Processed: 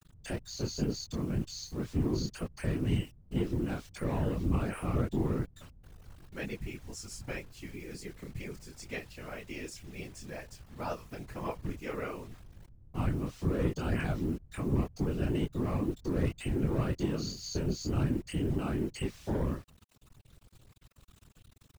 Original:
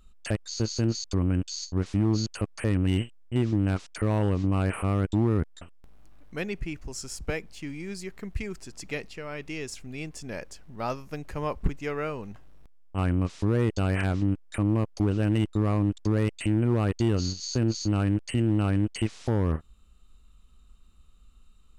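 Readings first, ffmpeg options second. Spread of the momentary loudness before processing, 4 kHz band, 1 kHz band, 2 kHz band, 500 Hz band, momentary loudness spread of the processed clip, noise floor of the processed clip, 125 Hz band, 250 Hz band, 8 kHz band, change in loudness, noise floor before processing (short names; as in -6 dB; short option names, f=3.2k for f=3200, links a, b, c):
12 LU, -6.0 dB, -6.0 dB, -6.0 dB, -5.5 dB, 13 LU, -61 dBFS, -7.5 dB, -6.5 dB, -6.5 dB, -6.5 dB, -54 dBFS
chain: -af "flanger=delay=20:depth=7.5:speed=2,acrusher=bits=8:mix=0:aa=0.000001,afftfilt=real='hypot(re,im)*cos(2*PI*random(0))':imag='hypot(re,im)*sin(2*PI*random(1))':win_size=512:overlap=0.75,volume=2.5dB"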